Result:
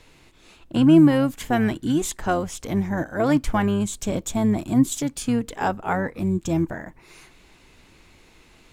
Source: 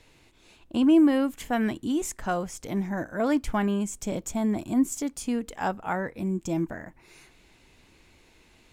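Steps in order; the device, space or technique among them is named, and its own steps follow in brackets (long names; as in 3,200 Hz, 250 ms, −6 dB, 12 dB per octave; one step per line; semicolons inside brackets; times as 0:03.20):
octave pedal (pitch-shifted copies added −12 semitones −9 dB)
level +4.5 dB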